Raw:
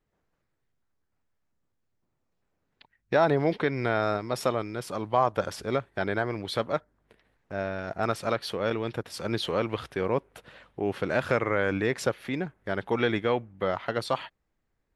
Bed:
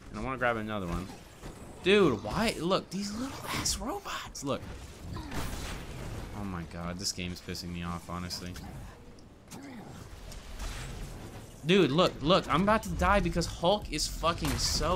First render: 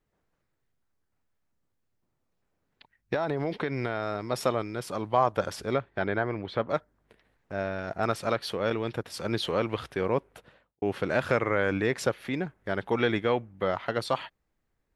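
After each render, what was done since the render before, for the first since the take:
0:03.14–0:04.25: downward compressor, threshold −24 dBFS
0:05.73–0:06.68: low-pass filter 4,600 Hz → 2,100 Hz
0:10.25–0:10.82: fade out and dull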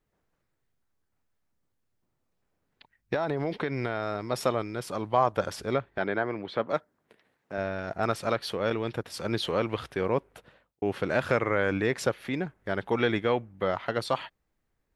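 0:05.98–0:07.58: high-pass filter 160 Hz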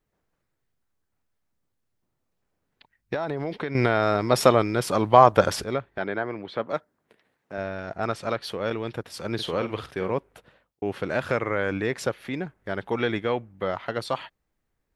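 0:03.75–0:05.64: clip gain +9.5 dB
0:07.84–0:08.44: Bessel low-pass filter 8,200 Hz
0:09.34–0:10.13: double-tracking delay 48 ms −10 dB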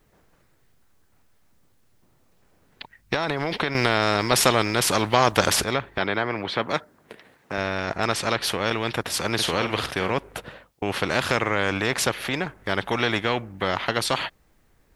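every bin compressed towards the loudest bin 2 to 1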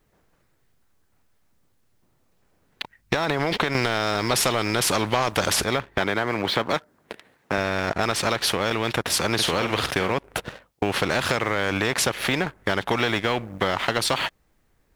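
leveller curve on the samples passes 2
downward compressor, threshold −19 dBFS, peak gain reduction 10.5 dB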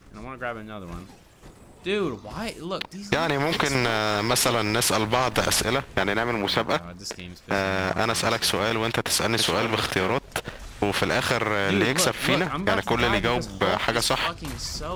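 mix in bed −2.5 dB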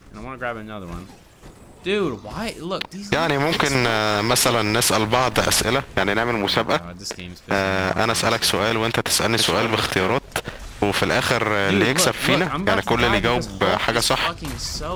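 level +4 dB
brickwall limiter −3 dBFS, peak gain reduction 2 dB

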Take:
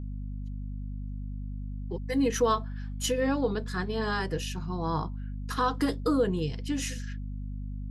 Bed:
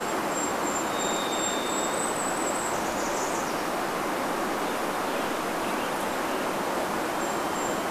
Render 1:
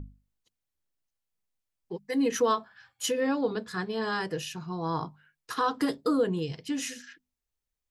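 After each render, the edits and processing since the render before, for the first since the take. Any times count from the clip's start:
mains-hum notches 50/100/150/200/250 Hz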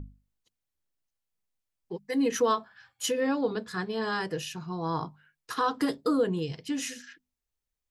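no processing that can be heard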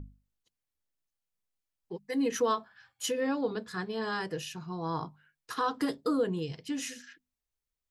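level −3 dB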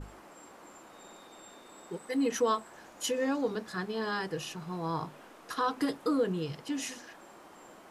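mix in bed −24.5 dB

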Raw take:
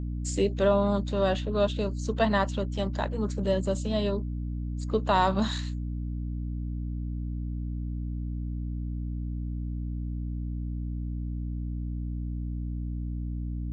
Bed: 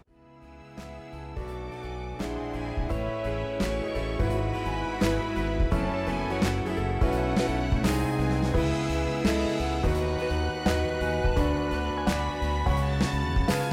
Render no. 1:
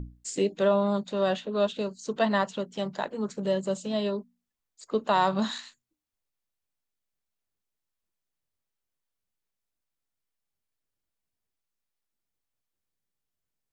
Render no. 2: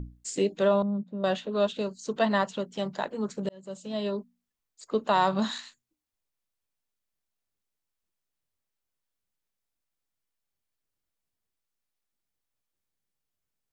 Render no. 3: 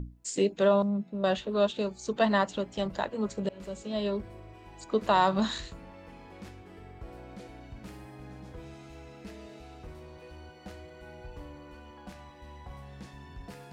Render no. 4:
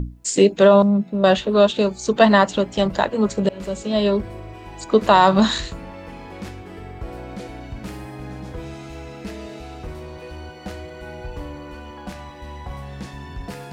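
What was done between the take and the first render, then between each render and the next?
mains-hum notches 60/120/180/240/300 Hz
0:00.82–0:01.24: resonant band-pass 190 Hz, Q 1.8; 0:03.49–0:04.19: fade in
mix in bed −20.5 dB
level +12 dB; brickwall limiter −2 dBFS, peak gain reduction 2.5 dB

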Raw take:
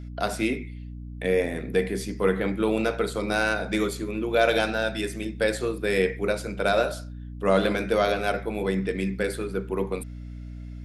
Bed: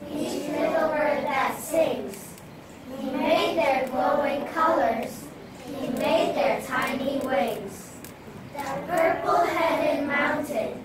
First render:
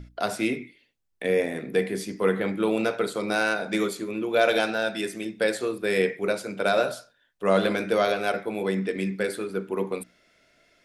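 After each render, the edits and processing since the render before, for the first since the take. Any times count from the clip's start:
mains-hum notches 60/120/180/240/300 Hz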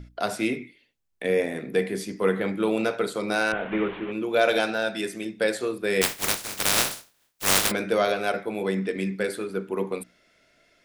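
0:03.52–0:04.12: linear delta modulator 16 kbit/s, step −31 dBFS
0:06.01–0:07.70: compressing power law on the bin magnitudes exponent 0.14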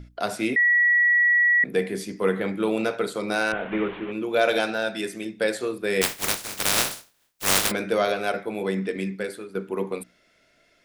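0:00.56–0:01.64: beep over 1,930 Hz −15.5 dBFS
0:08.96–0:09.55: fade out, to −9 dB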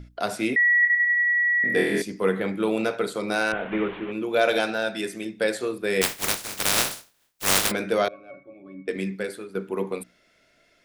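0:00.80–0:02.02: flutter between parallel walls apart 4.2 metres, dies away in 1.3 s
0:08.08–0:08.88: resonances in every octave C#, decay 0.2 s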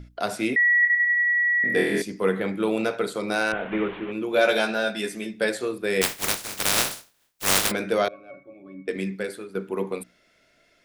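0:04.31–0:05.49: double-tracking delay 14 ms −4 dB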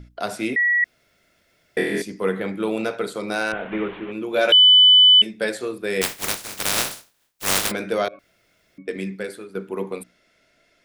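0:00.84–0:01.77: fill with room tone
0:04.52–0:05.22: beep over 3,000 Hz −8 dBFS
0:08.19–0:08.78: fill with room tone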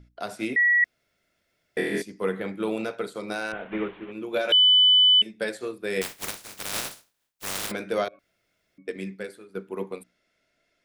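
brickwall limiter −13.5 dBFS, peak gain reduction 8 dB
expander for the loud parts 1.5 to 1, over −37 dBFS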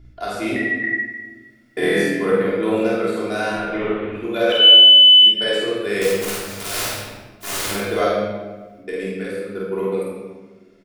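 double-tracking delay 49 ms −2 dB
rectangular room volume 1,100 cubic metres, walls mixed, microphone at 3.2 metres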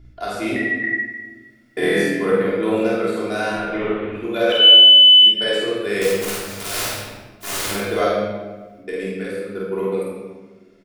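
no processing that can be heard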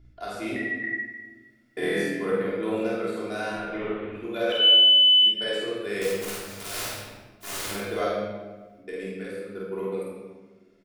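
level −8 dB

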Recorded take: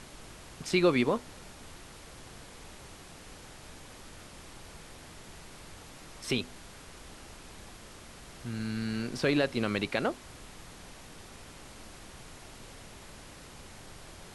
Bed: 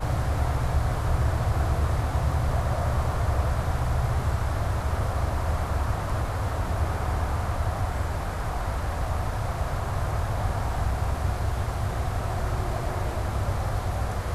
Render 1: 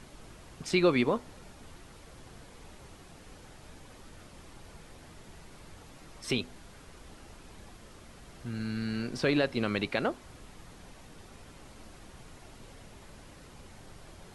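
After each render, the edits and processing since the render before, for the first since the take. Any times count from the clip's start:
broadband denoise 6 dB, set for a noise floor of −50 dBFS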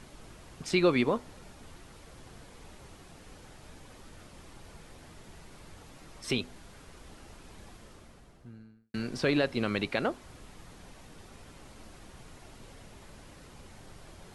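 0:07.72–0:08.94: fade out and dull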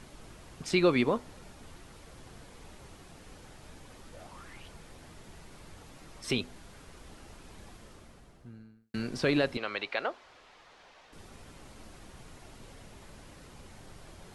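0:04.13–0:04.67: parametric band 490 Hz → 3,200 Hz +14.5 dB 0.42 octaves
0:09.57–0:11.13: three-way crossover with the lows and the highs turned down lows −20 dB, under 460 Hz, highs −21 dB, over 5,600 Hz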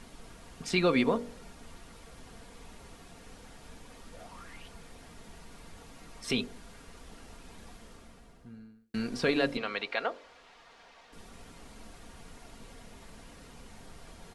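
comb filter 4.3 ms, depth 38%
hum removal 47.89 Hz, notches 13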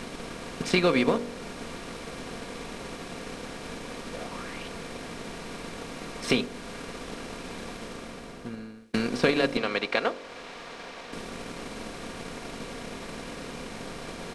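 compressor on every frequency bin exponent 0.6
transient designer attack +5 dB, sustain −4 dB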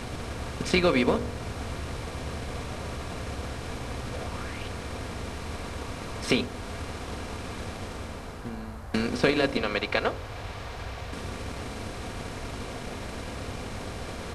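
mix in bed −12.5 dB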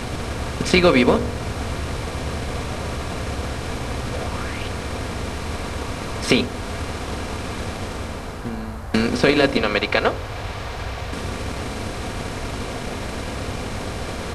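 level +8 dB
brickwall limiter −2 dBFS, peak gain reduction 3 dB

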